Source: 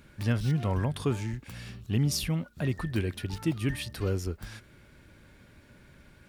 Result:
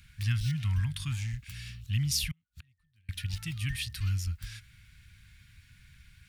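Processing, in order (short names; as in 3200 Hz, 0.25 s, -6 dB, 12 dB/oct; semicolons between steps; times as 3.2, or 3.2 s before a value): 2.31–3.09 flipped gate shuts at -33 dBFS, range -36 dB; Chebyshev band-stop 100–2300 Hz, order 2; gain +2.5 dB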